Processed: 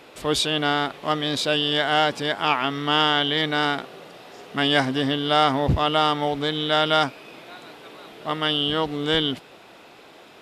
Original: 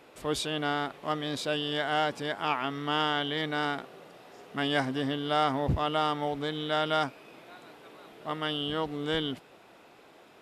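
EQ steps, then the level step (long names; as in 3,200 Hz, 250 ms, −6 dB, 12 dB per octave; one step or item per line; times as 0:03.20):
parametric band 3,800 Hz +4.5 dB 1.4 octaves
+7.0 dB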